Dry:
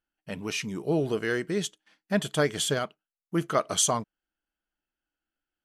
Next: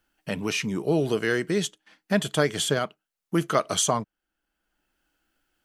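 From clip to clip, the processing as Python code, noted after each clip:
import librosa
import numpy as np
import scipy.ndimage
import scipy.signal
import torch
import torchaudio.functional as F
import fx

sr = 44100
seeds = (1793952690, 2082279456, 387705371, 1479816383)

y = fx.band_squash(x, sr, depth_pct=40)
y = y * librosa.db_to_amplitude(3.0)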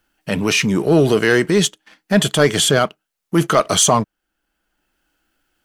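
y = fx.transient(x, sr, attack_db=-5, sustain_db=1)
y = fx.leveller(y, sr, passes=1)
y = y * librosa.db_to_amplitude(8.0)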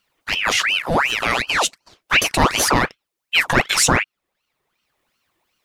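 y = fx.spec_box(x, sr, start_s=0.58, length_s=1.5, low_hz=330.0, high_hz=960.0, gain_db=-15)
y = fx.ring_lfo(y, sr, carrier_hz=1600.0, swing_pct=80, hz=2.7)
y = y * librosa.db_to_amplitude(1.0)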